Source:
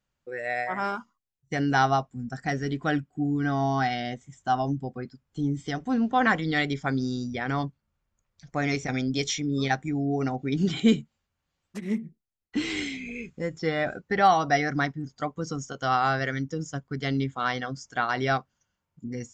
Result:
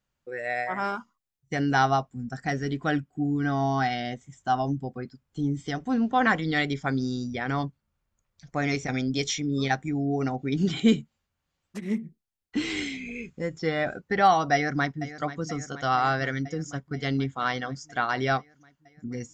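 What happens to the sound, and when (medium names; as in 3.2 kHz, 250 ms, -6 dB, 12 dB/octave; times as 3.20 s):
14.53–15.04 s: echo throw 480 ms, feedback 75%, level -14 dB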